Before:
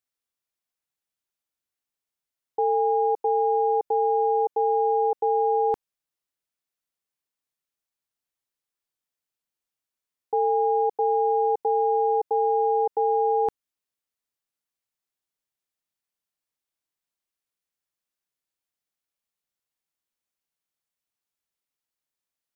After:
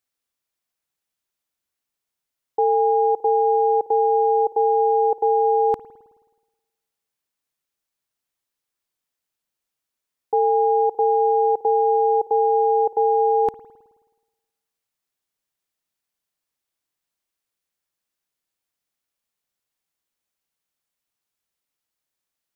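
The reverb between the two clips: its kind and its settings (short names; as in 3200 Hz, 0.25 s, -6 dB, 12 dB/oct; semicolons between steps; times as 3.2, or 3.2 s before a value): spring tank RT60 1.2 s, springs 53 ms, chirp 55 ms, DRR 15.5 dB; gain +4.5 dB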